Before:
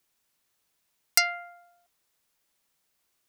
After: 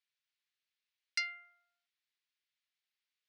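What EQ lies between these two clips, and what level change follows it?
flat-topped band-pass 2,800 Hz, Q 0.96
−9.0 dB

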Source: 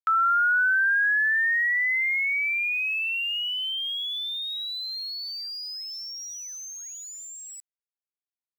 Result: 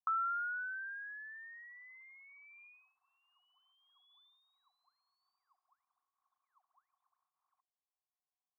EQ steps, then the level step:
formant resonators in series a
phaser with its sweep stopped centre 1,100 Hz, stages 4
+13.0 dB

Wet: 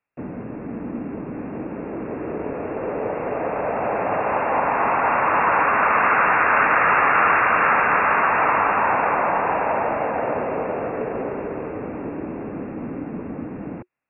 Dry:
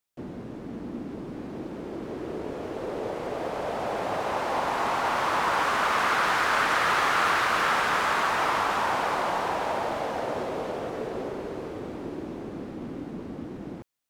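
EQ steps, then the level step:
linear-phase brick-wall low-pass 2,800 Hz
low-shelf EQ 68 Hz −6.5 dB
notch filter 360 Hz, Q 12
+7.0 dB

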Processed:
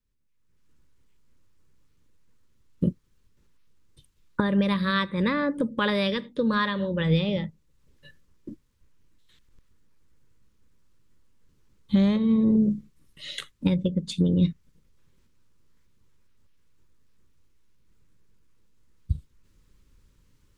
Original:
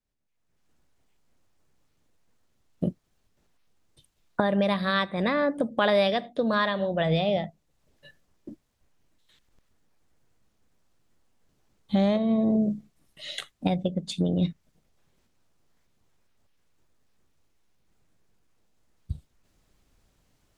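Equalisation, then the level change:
Butterworth band-reject 700 Hz, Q 2.1
low-shelf EQ 160 Hz +8.5 dB
0.0 dB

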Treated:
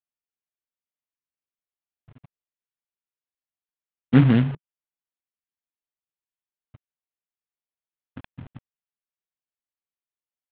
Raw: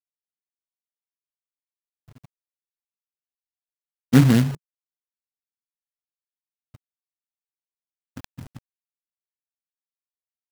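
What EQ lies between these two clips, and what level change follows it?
Butterworth low-pass 3,500 Hz 48 dB per octave
high-frequency loss of the air 74 metres
−1.0 dB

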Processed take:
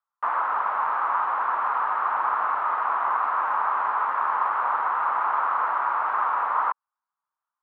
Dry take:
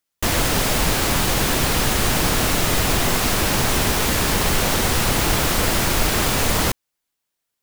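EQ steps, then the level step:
flat-topped band-pass 1,100 Hz, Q 2.5
high-frequency loss of the air 320 metres
+8.5 dB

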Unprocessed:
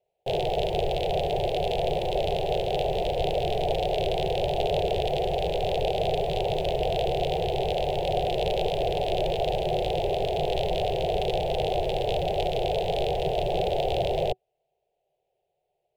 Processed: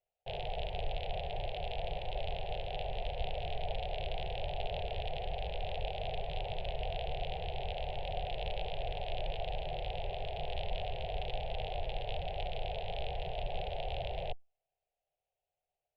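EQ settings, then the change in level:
high-frequency loss of the air 450 metres
guitar amp tone stack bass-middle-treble 10-0-10
+2.0 dB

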